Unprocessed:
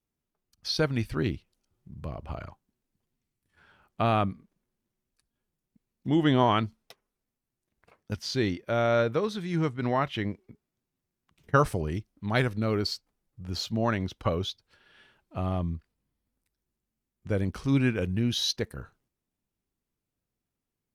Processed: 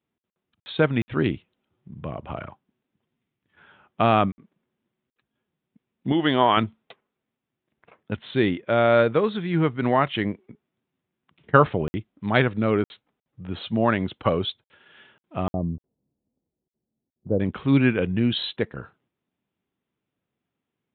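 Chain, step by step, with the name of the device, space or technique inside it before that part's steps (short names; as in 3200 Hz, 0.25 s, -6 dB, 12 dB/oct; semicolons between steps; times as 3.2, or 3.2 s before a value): call with lost packets (HPF 130 Hz 12 dB/oct; downsampling 8000 Hz; packet loss packets of 60 ms random); 6.12–6.57 low shelf 320 Hz -10 dB; 15.53–17.4 inverse Chebyshev low-pass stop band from 4100 Hz, stop band 80 dB; gain +6.5 dB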